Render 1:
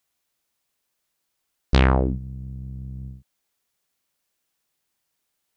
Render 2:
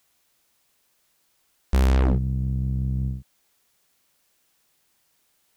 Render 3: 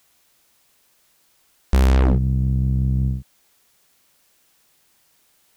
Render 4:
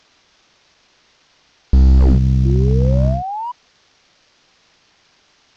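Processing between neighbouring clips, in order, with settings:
in parallel at +1 dB: limiter -14.5 dBFS, peak gain reduction 10.5 dB; on the sum: overloaded stage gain 19.5 dB; gain +3 dB
compressor, threshold -20 dBFS, peak gain reduction 3 dB; gain +6.5 dB
CVSD 32 kbps; painted sound rise, 2.45–3.52, 330–1000 Hz -30 dBFS; slew limiter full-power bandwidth 38 Hz; gain +6 dB

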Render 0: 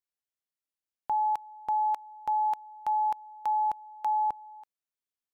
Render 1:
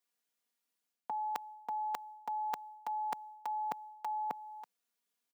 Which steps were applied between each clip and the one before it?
HPF 150 Hz 24 dB/oct; comb 4.2 ms, depth 88%; reverse; compressor, threshold -41 dBFS, peak gain reduction 11.5 dB; reverse; gain +5 dB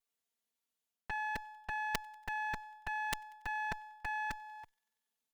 minimum comb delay 4.5 ms; thin delay 94 ms, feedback 68%, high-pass 2500 Hz, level -20.5 dB; added harmonics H 3 -8 dB, 7 -32 dB, 8 -20 dB, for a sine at -20.5 dBFS; gain +6.5 dB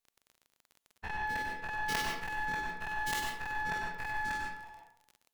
spectral dilation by 0.12 s; reverb RT60 0.65 s, pre-delay 92 ms, DRR 0.5 dB; crackle 31/s -41 dBFS; gain -3 dB

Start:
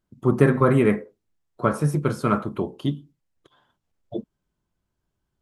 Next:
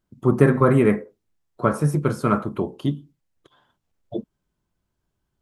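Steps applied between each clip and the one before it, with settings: dynamic EQ 3400 Hz, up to -4 dB, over -46 dBFS, Q 1.2; gain +1.5 dB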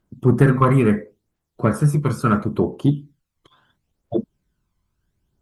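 phaser 0.73 Hz, delay 1 ms, feedback 52%; added harmonics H 5 -22 dB, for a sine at 0.5 dBFS; gain -1.5 dB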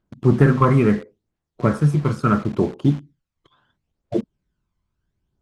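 in parallel at -7.5 dB: bit-crush 5-bit; on the sum: air absorption 67 m; gain -3 dB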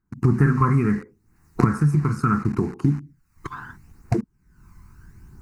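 recorder AGC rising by 55 dB/s; fixed phaser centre 1400 Hz, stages 4; gain -2 dB

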